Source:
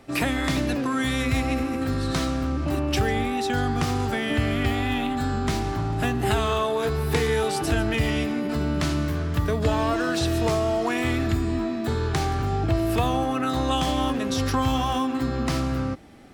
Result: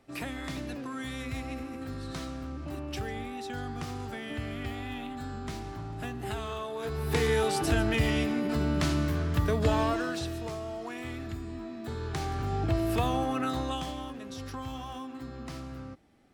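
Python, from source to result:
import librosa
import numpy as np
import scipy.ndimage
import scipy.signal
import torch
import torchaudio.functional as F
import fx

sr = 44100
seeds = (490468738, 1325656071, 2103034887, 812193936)

y = fx.gain(x, sr, db=fx.line((6.71, -12.5), (7.25, -3.0), (9.81, -3.0), (10.44, -14.0), (11.58, -14.0), (12.64, -5.0), (13.45, -5.0), (14.07, -15.5)))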